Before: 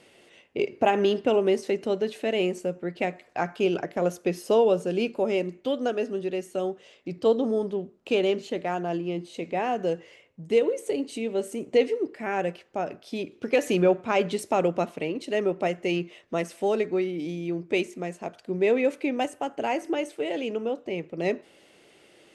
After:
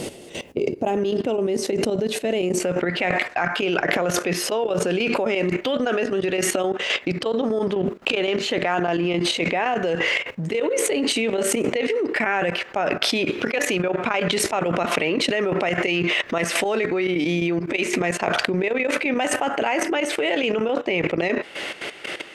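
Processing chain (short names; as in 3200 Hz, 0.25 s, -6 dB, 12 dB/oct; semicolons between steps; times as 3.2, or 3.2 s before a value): bell 1800 Hz -13.5 dB 2.6 oct, from 0.97 s -4 dB, from 2.6 s +12.5 dB; level quantiser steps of 16 dB; step gate "x...xx.x..xx.x.." 174 bpm -12 dB; fast leveller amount 100%; gain -6 dB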